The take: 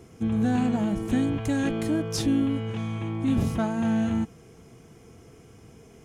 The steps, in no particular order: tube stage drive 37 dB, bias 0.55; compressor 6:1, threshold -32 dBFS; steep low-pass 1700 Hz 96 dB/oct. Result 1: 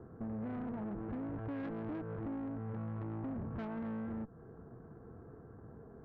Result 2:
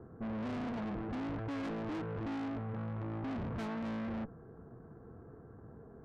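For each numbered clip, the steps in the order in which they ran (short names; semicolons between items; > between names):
compressor > steep low-pass > tube stage; steep low-pass > tube stage > compressor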